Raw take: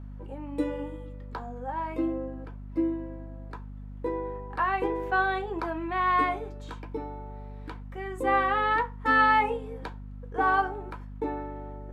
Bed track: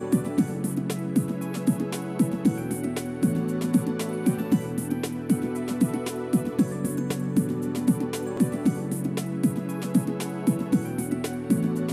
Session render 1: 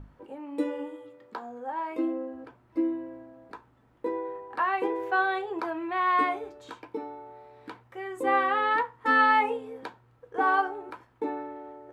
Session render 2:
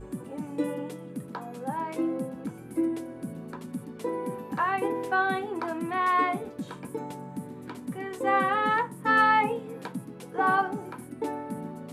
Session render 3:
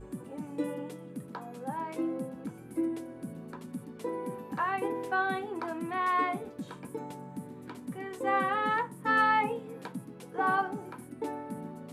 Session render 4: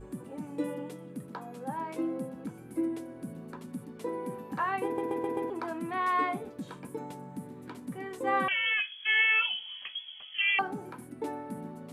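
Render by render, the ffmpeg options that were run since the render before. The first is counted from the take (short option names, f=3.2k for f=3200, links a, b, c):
-af "bandreject=f=50:t=h:w=6,bandreject=f=100:t=h:w=6,bandreject=f=150:t=h:w=6,bandreject=f=200:t=h:w=6,bandreject=f=250:t=h:w=6"
-filter_complex "[1:a]volume=-14dB[a];[0:a][a]amix=inputs=2:normalize=0"
-af "volume=-4dB"
-filter_complex "[0:a]asettb=1/sr,asplit=3[a][b][c];[a]atrim=end=8.484[d];[b]atrim=start=8.48:end=10.59,asetpts=PTS-STARTPTS,afade=t=in:d=0.004:c=qsin,afade=t=out:st=2.106:d=0.004:c=qsin,lowpass=f=3k:t=q:w=0.5098,lowpass=f=3k:t=q:w=0.6013,lowpass=f=3k:t=q:w=0.9,lowpass=f=3k:t=q:w=2.563,afreqshift=-3500[e];[c]atrim=start=10.586[f];[d][e]acrossfade=d=0.004:c1=hsin:c2=qsin[g];[g][f]acrossfade=d=0.004:c1=qsin:c2=hsin,asplit=6[h][i][j][k][l][m];[h]atrim=end=4.982[n];[i]atrim=start=4.848:end=4.982[o];[j]atrim=start=4.848:end=4.982[p];[k]atrim=start=4.848:end=4.982[q];[l]atrim=start=4.848:end=4.982[r];[m]atrim=start=5.498[s];[n][o]acrossfade=d=0.004:c1=hsin:c2=hsin[t];[t][p]acrossfade=d=0.004:c1=hsin:c2=hsin[u];[u][q]acrossfade=d=0.004:c1=hsin:c2=hsin[v];[v][r]acrossfade=d=0.004:c1=hsin:c2=hsin[w];[w][s]acrossfade=d=0.004:c1=hsin:c2=hsin"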